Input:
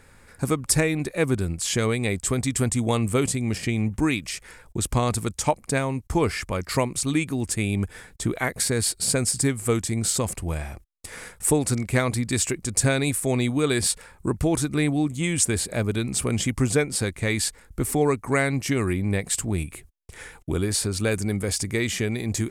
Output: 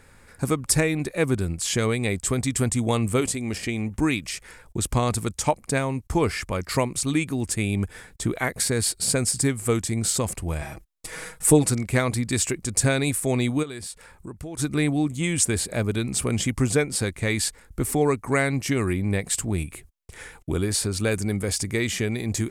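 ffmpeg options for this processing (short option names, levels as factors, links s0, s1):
-filter_complex "[0:a]asettb=1/sr,asplit=3[s0][s1][s2];[s0]atrim=end=3.204[s3];[s1]atrim=start=3.2:end=3.98,asetpts=PTS-STARTPTS,afade=t=in:d=0.004:c=qsin,afade=t=out:st=0.776:d=0.004:c=qsin,equalizer=f=140:w=1.5:g=-8.5[s4];[s2]atrim=start=3.976[s5];[s3][s4]acrossfade=d=0.004:c1=hsin:c2=qsin[s6];[s6][s5]acrossfade=d=0.004:c1=qsin:c2=hsin,asettb=1/sr,asplit=3[s7][s8][s9];[s7]atrim=end=10.614[s10];[s8]atrim=start=10.61:end=11.7,asetpts=PTS-STARTPTS,afade=t=in:d=0.004:c=qsin,afade=t=out:st=1.086:d=0.004:c=qsin,aecho=1:1:6.3:0.98,atrim=end_sample=48069[s11];[s9]atrim=start=11.696[s12];[s10][s11]acrossfade=d=0.004:c1=hsin:c2=qsin[s13];[s13][s12]acrossfade=d=0.004:c1=qsin:c2=hsin,asplit=3[s14][s15][s16];[s14]afade=t=out:st=13.62:d=0.02[s17];[s15]acompressor=threshold=0.00708:ratio=2:attack=3.2:release=140:knee=1:detection=peak,afade=t=in:st=13.62:d=0.02,afade=t=out:st=14.58:d=0.02[s18];[s16]afade=t=in:st=14.58:d=0.02[s19];[s17][s18][s19]amix=inputs=3:normalize=0"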